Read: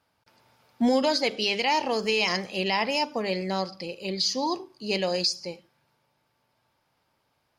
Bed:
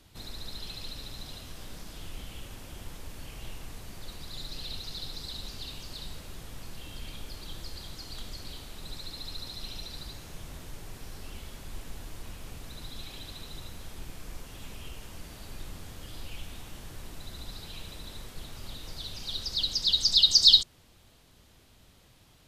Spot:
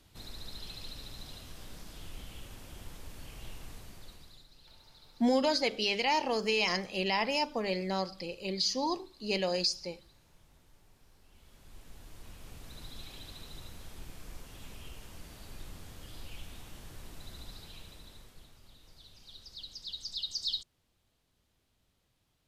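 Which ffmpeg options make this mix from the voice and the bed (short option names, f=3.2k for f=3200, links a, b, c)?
-filter_complex "[0:a]adelay=4400,volume=-4.5dB[a];[1:a]volume=11.5dB,afade=t=out:st=3.73:d=0.73:silence=0.158489,afade=t=in:st=11.29:d=1.49:silence=0.16788,afade=t=out:st=17.33:d=1.28:silence=0.251189[b];[a][b]amix=inputs=2:normalize=0"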